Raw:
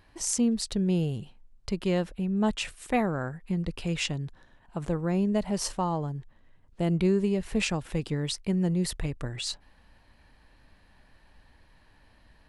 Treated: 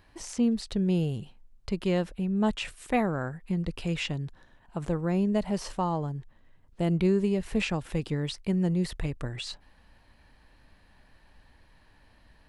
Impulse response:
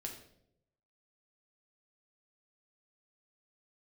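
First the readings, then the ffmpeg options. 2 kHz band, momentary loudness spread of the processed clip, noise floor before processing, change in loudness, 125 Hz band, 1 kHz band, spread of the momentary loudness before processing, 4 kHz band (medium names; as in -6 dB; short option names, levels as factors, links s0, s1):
-0.5 dB, 11 LU, -61 dBFS, -0.5 dB, 0.0 dB, 0.0 dB, 10 LU, -3.0 dB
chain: -filter_complex "[0:a]acrossover=split=3900[s0][s1];[s1]acompressor=threshold=0.00708:ratio=4:attack=1:release=60[s2];[s0][s2]amix=inputs=2:normalize=0"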